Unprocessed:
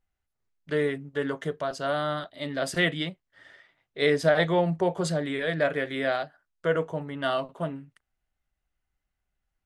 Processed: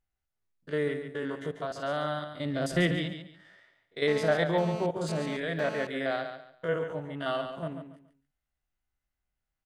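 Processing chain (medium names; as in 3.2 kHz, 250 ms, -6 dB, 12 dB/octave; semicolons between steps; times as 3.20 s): spectrogram pixelated in time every 50 ms; 2.33–2.97 s: bass shelf 370 Hz +9 dB; feedback delay 141 ms, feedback 26%, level -8.5 dB; 4.08–5.87 s: mobile phone buzz -37 dBFS; trim -3.5 dB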